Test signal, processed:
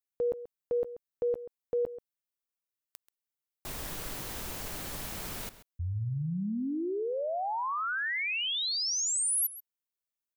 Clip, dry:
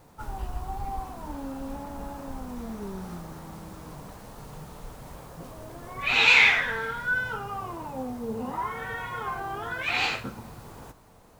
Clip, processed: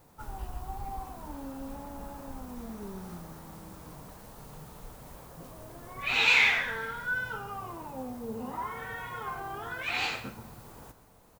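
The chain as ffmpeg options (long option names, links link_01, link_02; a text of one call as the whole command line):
ffmpeg -i in.wav -filter_complex "[0:a]highshelf=frequency=11000:gain=9,asplit=2[link_01][link_02];[link_02]adelay=134.1,volume=-14dB,highshelf=frequency=4000:gain=-3.02[link_03];[link_01][link_03]amix=inputs=2:normalize=0,volume=-5dB" out.wav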